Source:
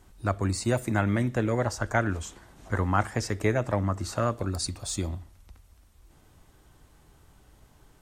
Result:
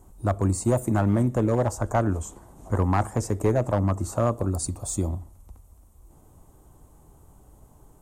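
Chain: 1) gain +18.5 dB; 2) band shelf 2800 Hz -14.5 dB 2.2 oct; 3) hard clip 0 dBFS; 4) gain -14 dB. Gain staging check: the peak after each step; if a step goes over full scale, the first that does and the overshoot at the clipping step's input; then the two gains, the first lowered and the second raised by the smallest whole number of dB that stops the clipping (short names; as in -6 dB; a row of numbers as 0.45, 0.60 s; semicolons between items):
+9.0, +7.5, 0.0, -14.0 dBFS; step 1, 7.5 dB; step 1 +10.5 dB, step 4 -6 dB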